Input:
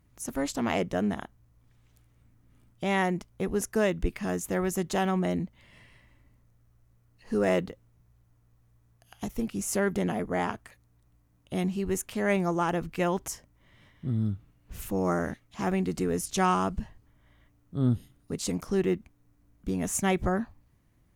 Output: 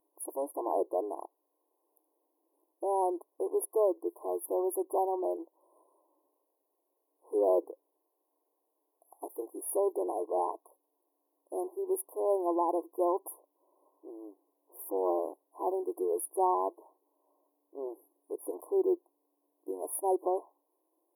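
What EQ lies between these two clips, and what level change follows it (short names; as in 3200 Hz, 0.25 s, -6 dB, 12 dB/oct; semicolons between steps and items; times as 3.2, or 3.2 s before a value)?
brick-wall FIR high-pass 300 Hz; brick-wall FIR band-stop 1100–9600 Hz; 0.0 dB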